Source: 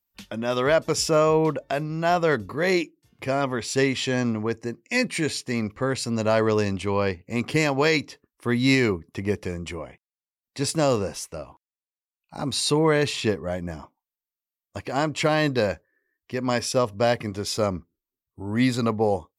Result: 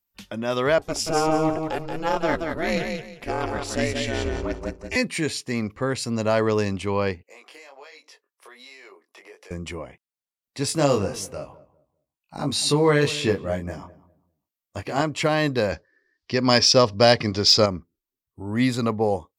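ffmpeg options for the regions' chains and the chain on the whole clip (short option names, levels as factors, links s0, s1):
-filter_complex "[0:a]asettb=1/sr,asplit=3[s0][s1][s2];[s0]atrim=end=0.784[s3];[s1]atrim=start=0.78:end=4.96,asetpts=PTS-STARTPTS,afade=t=in:d=0.004:c=qsin,afade=t=out:st=4.176:d=0.004:c=qsin,aeval=exprs='val(0)*sin(2*PI*160*n/s)':c=same,aecho=1:1:179|358|537:0.562|0.141|0.0351,atrim=end_sample=184338[s4];[s2]atrim=start=4.956[s5];[s3][s4]acrossfade=d=0.004:c1=hsin:c2=qsin[s6];[s6][s5]acrossfade=d=0.004:c1=qsin:c2=hsin,asettb=1/sr,asplit=3[s7][s8][s9];[s7]atrim=end=7.234[s10];[s8]atrim=start=7.23:end=9.51,asetpts=PTS-STARTPTS,afade=t=in:d=0.004:c=qsin,afade=t=out:st=2.276:d=0.004:c=qsin,highpass=f=480:w=0.5412,highpass=f=480:w=1.3066,acompressor=threshold=0.01:ratio=6:attack=3.2:release=140:knee=1:detection=peak,flanger=delay=19.5:depth=3.3:speed=1.3[s11];[s9]atrim=start=9.506[s12];[s10][s11]acrossfade=d=0.004:c1=hsin:c2=qsin[s13];[s13][s12]acrossfade=d=0.004:c1=qsin:c2=hsin,asettb=1/sr,asplit=3[s14][s15][s16];[s14]atrim=end=10.684[s17];[s15]atrim=start=10.68:end=15.02,asetpts=PTS-STARTPTS,afade=t=in:d=0.004:c=qsin,afade=t=out:st=4.336:d=0.004:c=qsin,asplit=2[s18][s19];[s19]adelay=21,volume=0.631[s20];[s18][s20]amix=inputs=2:normalize=0,atrim=end_sample=191394,asplit=2[s21][s22];[s22]adelay=200,lowpass=f=950:p=1,volume=0.158,asplit=2[s23][s24];[s24]adelay=200,lowpass=f=950:p=1,volume=0.27,asplit=2[s25][s26];[s26]adelay=200,lowpass=f=950:p=1,volume=0.27[s27];[s21][s23][s25][s27]amix=inputs=4:normalize=0,atrim=end_sample=191394[s28];[s16]atrim=start=15.016[s29];[s17][s28]acrossfade=d=0.004:c1=hsin:c2=qsin[s30];[s30][s29]acrossfade=d=0.004:c1=qsin:c2=hsin,asettb=1/sr,asplit=3[s31][s32][s33];[s31]atrim=end=15.724[s34];[s32]atrim=start=15.72:end=17.66,asetpts=PTS-STARTPTS,afade=t=in:d=0.004:c=qsin,afade=t=out:st=1.936:d=0.004:c=qsin,lowpass=f=4900:t=q:w=3.9,acontrast=35[s35];[s33]atrim=start=17.656[s36];[s34][s35]acrossfade=d=0.004:c1=hsin:c2=qsin[s37];[s37][s36]acrossfade=d=0.004:c1=qsin:c2=hsin"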